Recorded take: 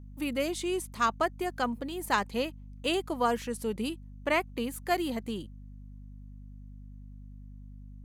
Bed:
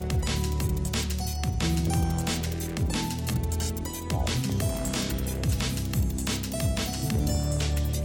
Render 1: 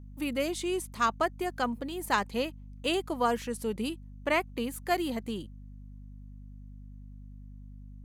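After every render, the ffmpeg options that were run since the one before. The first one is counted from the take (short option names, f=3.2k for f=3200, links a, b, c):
-af anull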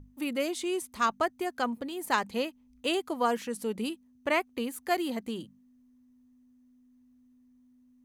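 -af "bandreject=f=50:t=h:w=6,bandreject=f=100:t=h:w=6,bandreject=f=150:t=h:w=6,bandreject=f=200:t=h:w=6"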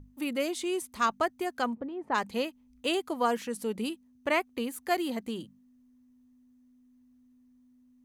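-filter_complex "[0:a]asplit=3[a][b][c];[a]afade=t=out:st=1.73:d=0.02[d];[b]lowpass=1.2k,afade=t=in:st=1.73:d=0.02,afade=t=out:st=2.14:d=0.02[e];[c]afade=t=in:st=2.14:d=0.02[f];[d][e][f]amix=inputs=3:normalize=0"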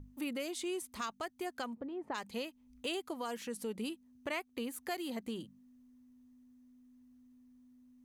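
-filter_complex "[0:a]acrossover=split=2400[a][b];[a]alimiter=level_in=1.5dB:limit=-24dB:level=0:latency=1:release=322,volume=-1.5dB[c];[c][b]amix=inputs=2:normalize=0,acompressor=threshold=-45dB:ratio=1.5"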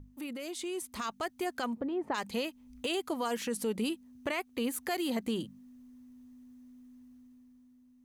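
-af "alimiter=level_in=8dB:limit=-24dB:level=0:latency=1:release=14,volume=-8dB,dynaudnorm=f=110:g=17:m=8dB"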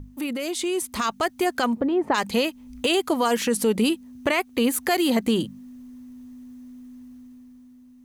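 -af "volume=11.5dB"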